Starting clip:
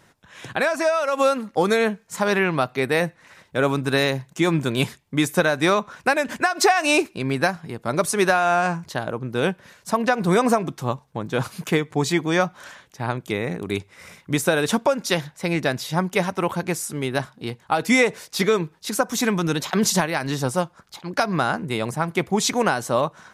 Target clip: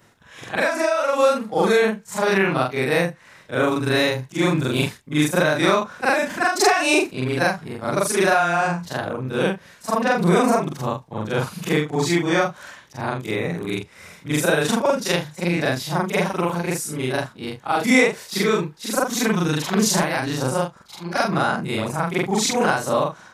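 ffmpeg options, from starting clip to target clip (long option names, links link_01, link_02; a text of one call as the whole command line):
ffmpeg -i in.wav -af "afftfilt=real='re':imag='-im':win_size=4096:overlap=0.75,volume=5.5dB" out.wav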